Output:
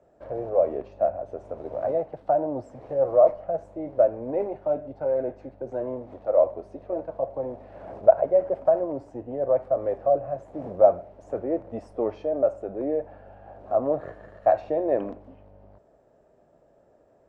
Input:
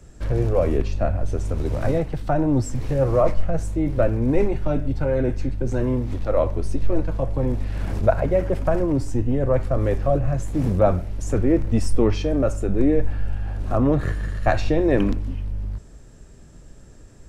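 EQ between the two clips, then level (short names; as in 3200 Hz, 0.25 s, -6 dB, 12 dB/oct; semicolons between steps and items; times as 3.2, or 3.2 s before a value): band-pass 640 Hz, Q 3.6; +4.0 dB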